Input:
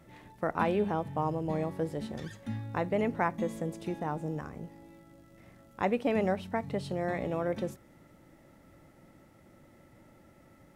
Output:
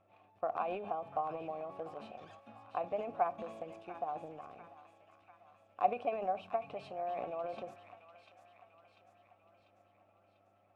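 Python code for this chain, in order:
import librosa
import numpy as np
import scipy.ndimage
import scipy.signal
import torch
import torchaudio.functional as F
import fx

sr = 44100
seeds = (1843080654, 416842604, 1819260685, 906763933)

p1 = fx.vowel_filter(x, sr, vowel='a')
p2 = fx.dmg_buzz(p1, sr, base_hz=100.0, harmonics=23, level_db=-79.0, tilt_db=-6, odd_only=False)
p3 = fx.transient(p2, sr, attack_db=6, sustain_db=10)
y = p3 + fx.echo_wet_highpass(p3, sr, ms=694, feedback_pct=55, hz=1500.0, wet_db=-7.5, dry=0)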